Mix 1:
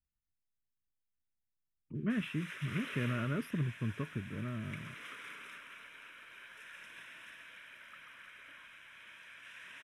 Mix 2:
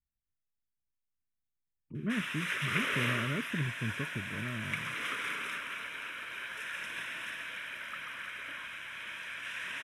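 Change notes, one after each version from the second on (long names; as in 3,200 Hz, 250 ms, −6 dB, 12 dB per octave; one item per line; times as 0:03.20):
background +12.0 dB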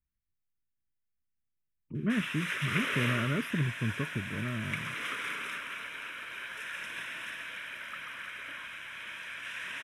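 speech +4.0 dB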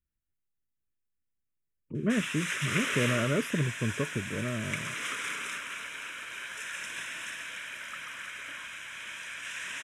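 speech: add parametric band 530 Hz +10 dB 1.1 octaves
master: add parametric band 7,200 Hz +14 dB 0.86 octaves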